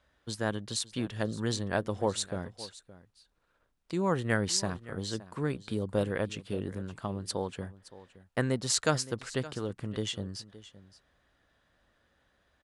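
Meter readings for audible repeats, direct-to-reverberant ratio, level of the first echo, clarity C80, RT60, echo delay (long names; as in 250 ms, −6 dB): 1, no reverb audible, −17.5 dB, no reverb audible, no reverb audible, 568 ms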